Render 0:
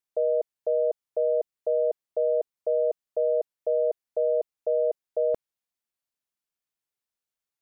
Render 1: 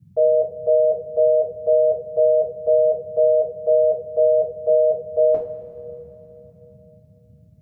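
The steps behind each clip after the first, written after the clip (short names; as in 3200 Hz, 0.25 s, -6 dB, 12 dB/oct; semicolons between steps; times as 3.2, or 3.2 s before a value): two-slope reverb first 0.31 s, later 3.4 s, from -18 dB, DRR -5.5 dB; band noise 69–190 Hz -51 dBFS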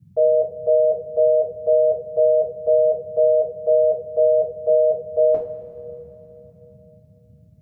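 nothing audible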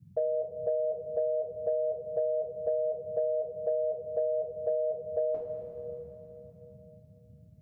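compressor 6:1, threshold -23 dBFS, peak gain reduction 10 dB; gain -4.5 dB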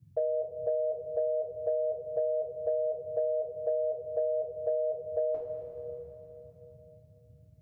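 bell 200 Hz -15 dB 0.42 oct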